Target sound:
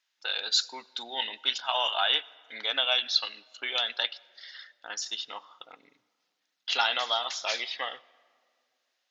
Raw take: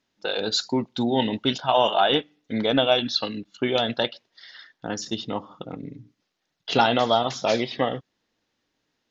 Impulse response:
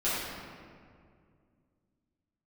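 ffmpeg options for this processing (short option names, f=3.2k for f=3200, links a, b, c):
-filter_complex "[0:a]highpass=1.4k,asplit=2[a][b];[1:a]atrim=start_sample=2205,adelay=83[c];[b][c]afir=irnorm=-1:irlink=0,volume=-34dB[d];[a][d]amix=inputs=2:normalize=0"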